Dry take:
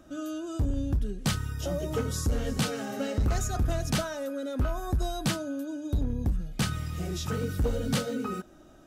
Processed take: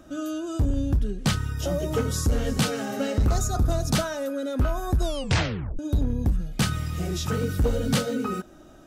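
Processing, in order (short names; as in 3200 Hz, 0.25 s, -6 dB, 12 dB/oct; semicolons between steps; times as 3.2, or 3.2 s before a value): 1.01–1.57 high shelf 9400 Hz -7 dB; 3.3–3.95 spectral gain 1500–3400 Hz -8 dB; 5.03 tape stop 0.76 s; gain +4.5 dB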